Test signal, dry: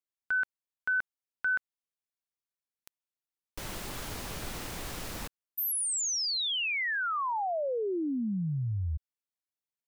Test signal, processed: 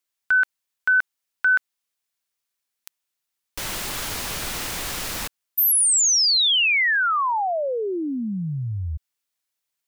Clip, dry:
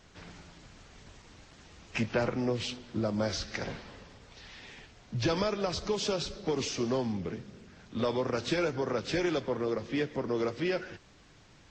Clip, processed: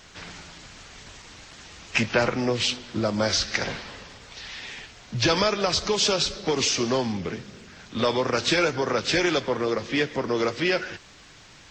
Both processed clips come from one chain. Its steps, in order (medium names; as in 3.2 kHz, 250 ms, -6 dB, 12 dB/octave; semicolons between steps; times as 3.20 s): tilt shelf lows -4.5 dB, about 880 Hz; trim +8.5 dB